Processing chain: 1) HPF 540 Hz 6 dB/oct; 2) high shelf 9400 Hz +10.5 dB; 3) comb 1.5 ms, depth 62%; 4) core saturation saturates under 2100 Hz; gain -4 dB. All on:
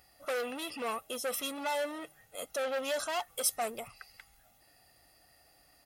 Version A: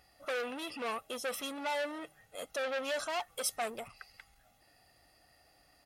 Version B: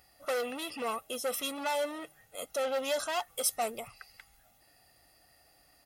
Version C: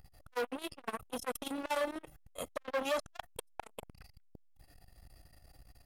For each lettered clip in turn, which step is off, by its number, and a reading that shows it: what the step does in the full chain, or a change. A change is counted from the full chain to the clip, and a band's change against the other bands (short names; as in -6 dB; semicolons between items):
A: 2, 8 kHz band -3.0 dB; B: 4, loudness change +1.5 LU; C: 1, 8 kHz band -9.0 dB